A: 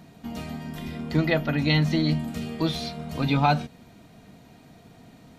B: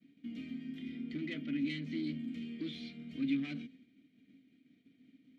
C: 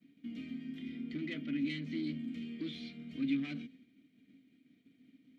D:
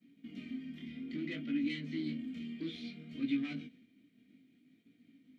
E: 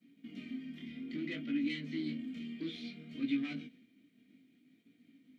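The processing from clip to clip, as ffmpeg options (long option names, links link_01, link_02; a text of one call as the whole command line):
ffmpeg -i in.wav -filter_complex "[0:a]asoftclip=type=tanh:threshold=-23.5dB,agate=range=-33dB:threshold=-44dB:ratio=3:detection=peak,asplit=3[link_01][link_02][link_03];[link_01]bandpass=frequency=270:width_type=q:width=8,volume=0dB[link_04];[link_02]bandpass=frequency=2290:width_type=q:width=8,volume=-6dB[link_05];[link_03]bandpass=frequency=3010:width_type=q:width=8,volume=-9dB[link_06];[link_04][link_05][link_06]amix=inputs=3:normalize=0,volume=1dB" out.wav
ffmpeg -i in.wav -af "equalizer=frequency=1100:width_type=o:width=0.77:gain=2" out.wav
ffmpeg -i in.wav -af "flanger=delay=17:depth=7.7:speed=0.6,volume=3dB" out.wav
ffmpeg -i in.wav -af "lowshelf=frequency=99:gain=-9,volume=1dB" out.wav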